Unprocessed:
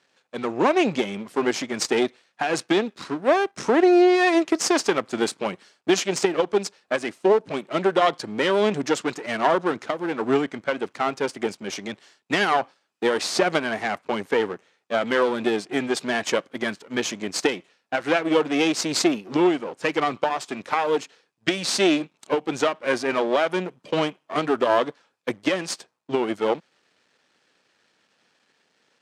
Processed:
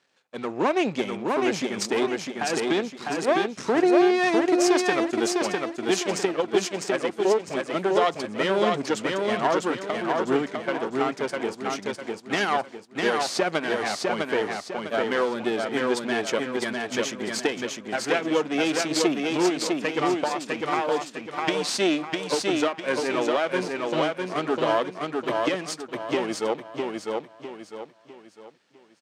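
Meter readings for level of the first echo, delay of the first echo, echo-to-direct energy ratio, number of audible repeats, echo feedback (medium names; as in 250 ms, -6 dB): -3.0 dB, 653 ms, -2.5 dB, 4, 37%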